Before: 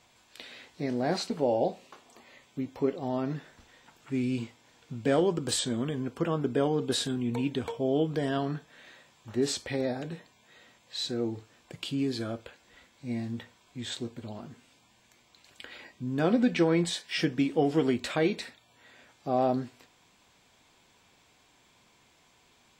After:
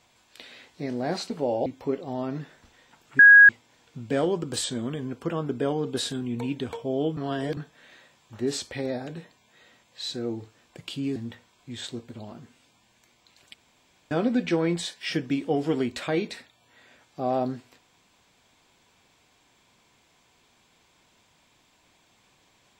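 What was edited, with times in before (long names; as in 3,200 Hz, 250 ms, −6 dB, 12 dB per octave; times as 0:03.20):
0:01.66–0:02.61: remove
0:04.14–0:04.44: beep over 1,650 Hz −8 dBFS
0:08.12–0:08.52: reverse
0:12.11–0:13.24: remove
0:15.62–0:16.19: fill with room tone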